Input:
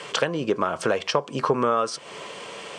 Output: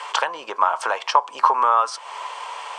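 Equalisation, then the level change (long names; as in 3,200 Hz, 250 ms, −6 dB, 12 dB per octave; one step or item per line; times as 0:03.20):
high-pass with resonance 910 Hz, resonance Q 5.1
0.0 dB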